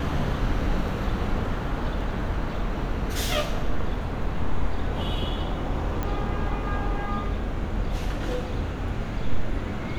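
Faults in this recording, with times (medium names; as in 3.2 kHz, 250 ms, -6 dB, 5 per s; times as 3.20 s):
6.03 s: pop -15 dBFS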